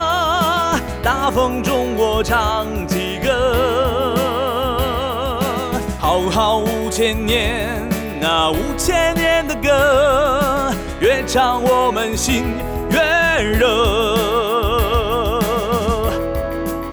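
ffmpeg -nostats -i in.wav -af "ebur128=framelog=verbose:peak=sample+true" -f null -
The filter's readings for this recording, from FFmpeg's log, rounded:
Integrated loudness:
  I:         -16.9 LUFS
  Threshold: -26.9 LUFS
Loudness range:
  LRA:         2.6 LU
  Threshold: -36.8 LUFS
  LRA low:   -18.2 LUFS
  LRA high:  -15.6 LUFS
Sample peak:
  Peak:       -5.9 dBFS
True peak:
  Peak:       -5.9 dBFS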